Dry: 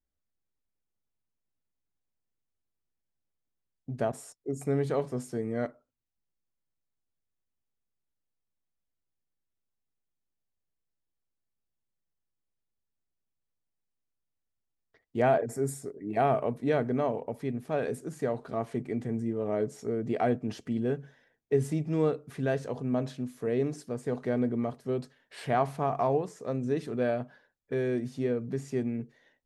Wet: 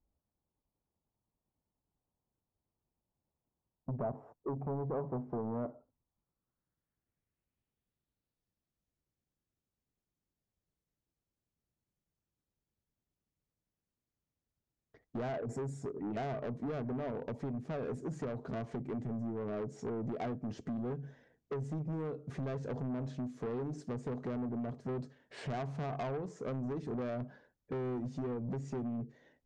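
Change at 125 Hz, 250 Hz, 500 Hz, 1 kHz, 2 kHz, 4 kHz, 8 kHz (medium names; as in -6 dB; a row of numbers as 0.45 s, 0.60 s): -5.0 dB, -6.5 dB, -10.0 dB, -10.5 dB, -10.5 dB, -8.0 dB, -13.5 dB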